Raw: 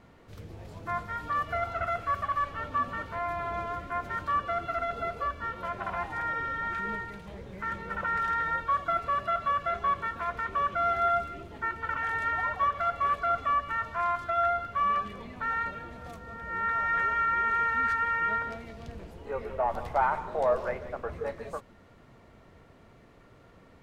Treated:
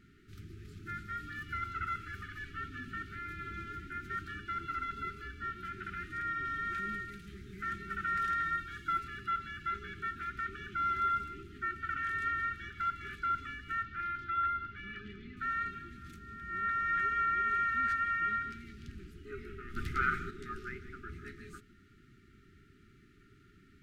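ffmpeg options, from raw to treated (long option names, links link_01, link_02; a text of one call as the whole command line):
ffmpeg -i in.wav -filter_complex "[0:a]asettb=1/sr,asplit=3[link_01][link_02][link_03];[link_01]atrim=end=6.454[link_04];[link_02]atrim=start=6.45:end=9.08,asetpts=PTS-STARTPTS,afade=type=in:duration=0.004:curve=qsin,afade=type=out:start_time=2.626:duration=0.004:curve=qsin,highshelf=frequency=4700:gain=5.5[link_05];[link_03]atrim=start=9.076[link_06];[link_04][link_05]acrossfade=duration=0.004:curve1=hsin:curve2=qsin[link_07];[link_07][link_06]acrossfade=duration=0.004:curve1=qsin:curve2=hsin,asettb=1/sr,asplit=3[link_08][link_09][link_10];[link_08]atrim=end=13.834[link_11];[link_09]atrim=start=13.83:end=15.37,asetpts=PTS-STARTPTS,afade=type=in:duration=0.004:curve=qsin,afade=type=out:start_time=1.536:duration=0.004:curve=qsin,lowpass=4000[link_12];[link_10]atrim=start=15.366[link_13];[link_11][link_12]acrossfade=duration=0.004:curve1=hsin:curve2=qsin[link_14];[link_14][link_13]acrossfade=duration=0.004:curve1=qsin:curve2=hsin,asettb=1/sr,asplit=3[link_15][link_16][link_17];[link_15]atrim=end=19.764[link_18];[link_16]atrim=start=19.76:end=20.31,asetpts=PTS-STARTPTS,afade=type=in:duration=0.004:curve=qsin,afade=type=out:start_time=0.546:duration=0.004:curve=qsin,acontrast=85[link_19];[link_17]atrim=start=20.306[link_20];[link_18][link_19]acrossfade=duration=0.004:curve1=hsin:curve2=qsin[link_21];[link_21][link_20]acrossfade=duration=0.004:curve1=qsin:curve2=hsin,afftfilt=real='re*(1-between(b*sr/4096,430,1200))':imag='im*(1-between(b*sr/4096,430,1200))':win_size=4096:overlap=0.75,volume=-4dB" out.wav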